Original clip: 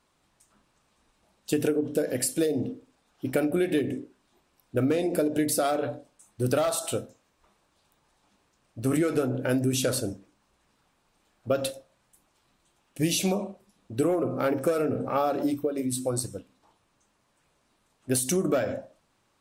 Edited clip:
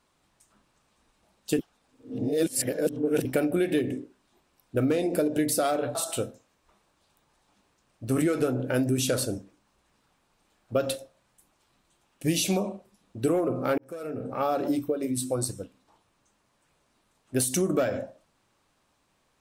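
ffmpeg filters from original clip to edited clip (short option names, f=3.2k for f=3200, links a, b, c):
-filter_complex "[0:a]asplit=5[a][b][c][d][e];[a]atrim=end=1.592[f];[b]atrim=start=1.588:end=3.252,asetpts=PTS-STARTPTS,areverse[g];[c]atrim=start=3.248:end=5.952[h];[d]atrim=start=6.698:end=14.53,asetpts=PTS-STARTPTS,afade=t=out:st=7.828:d=0.004:c=hsin[i];[e]atrim=start=14.53,asetpts=PTS-STARTPTS,afade=t=in:d=0.8[j];[f][g]acrossfade=d=0.004:c1=hsin:c2=hsin[k];[k][h]acrossfade=d=0.004:c1=hsin:c2=hsin[l];[i][j]concat=n=2:v=0:a=1[m];[l][m]acrossfade=d=0.004:c1=hsin:c2=hsin"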